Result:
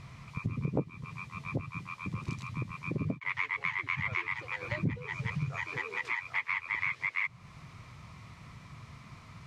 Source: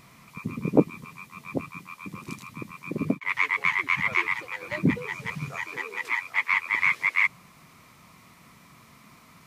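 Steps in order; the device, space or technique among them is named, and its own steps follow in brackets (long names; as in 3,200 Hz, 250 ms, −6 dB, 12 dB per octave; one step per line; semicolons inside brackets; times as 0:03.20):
jukebox (low-pass filter 5,800 Hz 12 dB per octave; low shelf with overshoot 160 Hz +10.5 dB, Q 1.5; downward compressor 3 to 1, threshold −32 dBFS, peak gain reduction 15 dB)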